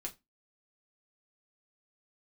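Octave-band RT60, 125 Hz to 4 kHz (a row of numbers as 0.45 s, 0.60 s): 0.20 s, 0.30 s, 0.20 s, 0.20 s, 0.20 s, 0.20 s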